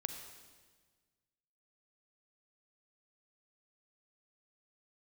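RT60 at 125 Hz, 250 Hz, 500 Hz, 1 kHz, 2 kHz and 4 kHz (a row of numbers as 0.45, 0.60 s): 2.0, 1.8, 1.5, 1.4, 1.4, 1.4 s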